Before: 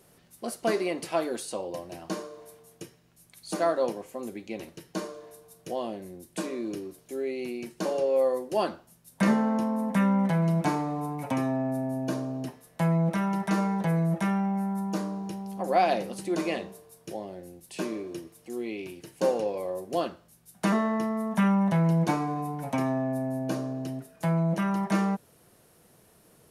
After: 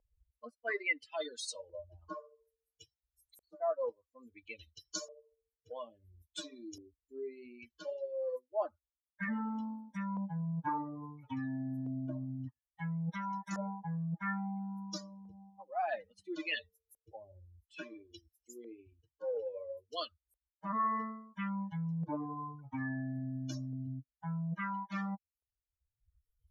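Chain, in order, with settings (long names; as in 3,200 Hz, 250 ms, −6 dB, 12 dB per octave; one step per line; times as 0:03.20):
spectral dynamics exaggerated over time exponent 3
parametric band 360 Hz −14.5 dB 0.37 octaves
in parallel at −3 dB: upward compression, threshold −39 dBFS
on the sum: dynamic equaliser 1,900 Hz, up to +6 dB, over −55 dBFS, Q 3.6
reversed playback
downward compressor 12 to 1, threshold −38 dBFS, peak gain reduction 21 dB
reversed playback
auto-filter low-pass saw up 0.59 Hz 540–7,600 Hz
level +2.5 dB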